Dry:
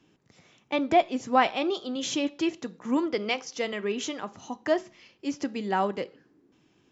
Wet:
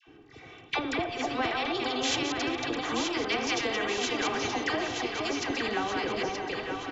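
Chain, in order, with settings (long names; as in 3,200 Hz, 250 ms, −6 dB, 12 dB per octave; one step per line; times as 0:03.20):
delay that plays each chunk backwards 122 ms, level −7 dB
low-pass filter 2,800 Hz 12 dB per octave
comb filter 2.6 ms, depth 79%
hum removal 100.5 Hz, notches 35
downward compressor 10 to 1, threshold −33 dBFS, peak gain reduction 21 dB
all-pass dispersion lows, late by 72 ms, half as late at 940 Hz
on a send: delay that swaps between a low-pass and a high-pass 463 ms, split 880 Hz, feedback 68%, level −6 dB
on the sum: noise gate −50 dBFS, range −15 dB
every bin compressed towards the loudest bin 2 to 1
level +6 dB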